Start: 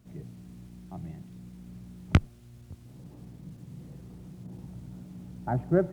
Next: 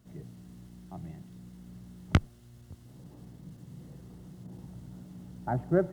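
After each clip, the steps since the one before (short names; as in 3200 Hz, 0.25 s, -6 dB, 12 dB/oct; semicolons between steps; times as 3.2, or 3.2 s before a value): low shelf 370 Hz -3 dB; notch 2400 Hz, Q 7.8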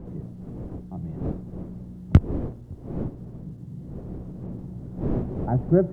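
wind noise 360 Hz -42 dBFS; tilt shelf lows +8.5 dB, about 820 Hz; gain +1 dB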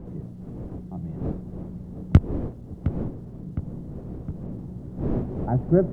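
darkening echo 0.712 s, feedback 63%, low-pass 1600 Hz, level -11 dB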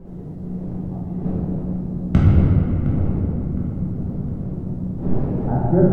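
shoebox room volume 190 m³, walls hard, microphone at 1.1 m; gain -3 dB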